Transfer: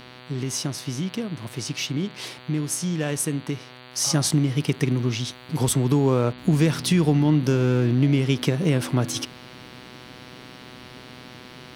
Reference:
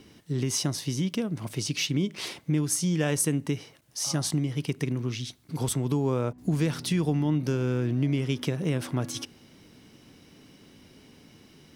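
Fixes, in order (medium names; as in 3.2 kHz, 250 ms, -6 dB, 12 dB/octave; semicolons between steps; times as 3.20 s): de-hum 125.4 Hz, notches 37; gain correction -6.5 dB, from 3.93 s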